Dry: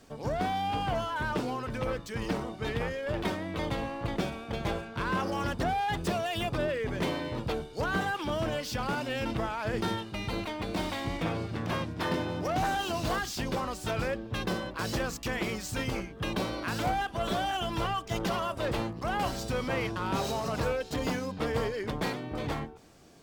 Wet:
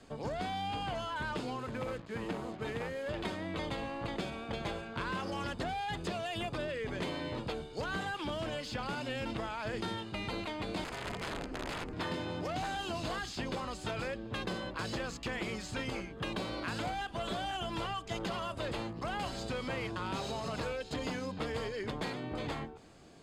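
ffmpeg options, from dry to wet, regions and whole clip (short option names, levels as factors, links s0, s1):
-filter_complex "[0:a]asettb=1/sr,asplit=3[s0][s1][s2];[s0]atrim=end=1.594[s3];[s1]atrim=start=1.59:end=3.09,asetpts=PTS-STARTPTS,afade=t=in:d=0.004:c=qsin,afade=t=out:st=1.496:d=0.004:c=qsin,highpass=f=110:p=1,adynamicsmooth=sensitivity=4.5:basefreq=1300,acrusher=bits=7:mix=0:aa=0.5[s4];[s2]atrim=start=3.086[s5];[s3][s4]acrossfade=d=0.004:c1=hsin:c2=qsin[s6];[s6][s5]acrossfade=d=0.004:c1=qsin:c2=hsin,asettb=1/sr,asplit=3[s7][s8][s9];[s7]atrim=end=10.844[s10];[s8]atrim=start=10.84:end=11.93,asetpts=PTS-STARTPTS,afade=t=in:d=0.004:c=qsin,afade=t=out:st=1.086:d=0.004:c=qsin,equalizer=f=3700:w=3.3:g=-15,aeval=exprs='(mod(23.7*val(0)+1,2)-1)/23.7':c=same,aeval=exprs='val(0)*sin(2*PI*150*n/s)':c=same[s11];[s9]atrim=start=11.926[s12];[s10][s11]acrossfade=d=0.004:c1=hsin:c2=qsin[s13];[s13][s12]acrossfade=d=0.004:c1=qsin:c2=hsin,lowpass=8000,bandreject=f=5700:w=6.5,acrossover=split=210|2400|5700[s14][s15][s16][s17];[s14]acompressor=threshold=0.00708:ratio=4[s18];[s15]acompressor=threshold=0.0141:ratio=4[s19];[s16]acompressor=threshold=0.00562:ratio=4[s20];[s17]acompressor=threshold=0.00178:ratio=4[s21];[s18][s19][s20][s21]amix=inputs=4:normalize=0"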